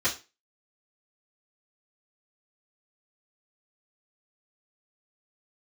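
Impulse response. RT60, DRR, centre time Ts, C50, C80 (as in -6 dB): 0.30 s, -12.5 dB, 16 ms, 12.0 dB, 18.5 dB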